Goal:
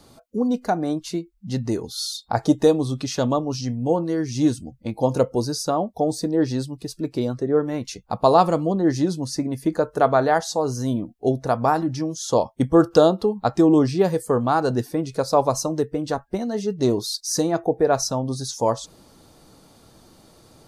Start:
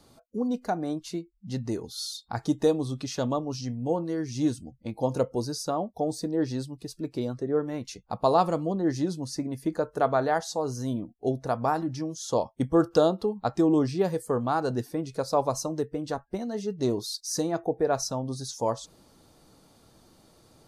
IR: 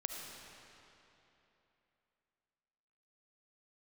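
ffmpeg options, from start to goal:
-filter_complex "[0:a]asettb=1/sr,asplit=3[a][b][c];[a]atrim=end=2.144[d];[b]atrim=start=2.14:end=2.55,asetpts=PTS-STARTPTS,afade=t=in:d=0.004:c=qsin,afade=t=out:st=0.406:d=0.004:c=qsin,equalizer=f=580:w=1.6:g=9[e];[c]atrim=start=2.546[f];[d][e]acrossfade=d=0.004:c1=hsin:c2=qsin[g];[g][f]acrossfade=d=0.004:c1=qsin:c2=hsin,volume=6.5dB"

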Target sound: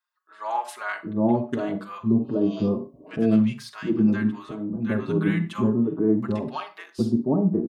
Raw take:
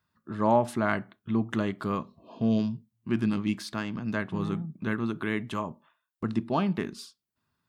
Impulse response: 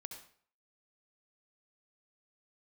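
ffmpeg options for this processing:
-filter_complex "[0:a]acrossover=split=860[a][b];[a]adelay=760[c];[c][b]amix=inputs=2:normalize=0,asettb=1/sr,asplit=3[d][e][f];[d]atrim=end=4.484[g];[e]atrim=start=4.48:end=4.89,asetpts=PTS-STARTPTS,afade=t=in:d=0.004:c=qsin,afade=t=out:st=0.406:d=0.004:c=qsin,acompressor=threshold=-35dB:ratio=2.5[h];[f]atrim=start=4.886[i];[g][h]acrossfade=d=0.004:c1=hsin:c2=qsin[j];[j][i]acrossfade=d=0.004:c1=qsin:c2=hsin,asplit=2[k][l];[l]equalizer=f=420:t=o:w=2:g=13.5[m];[1:a]atrim=start_sample=2205,asetrate=74970,aresample=44100,lowshelf=f=380:g=7.5[n];[m][n]afir=irnorm=-1:irlink=0,volume=4.5dB[o];[k][o]amix=inputs=2:normalize=0,dynaudnorm=f=190:g=5:m=11.5dB,asplit=2[p][q];[q]adelay=5.2,afreqshift=1.4[r];[p][r]amix=inputs=2:normalize=1,volume=-6dB"

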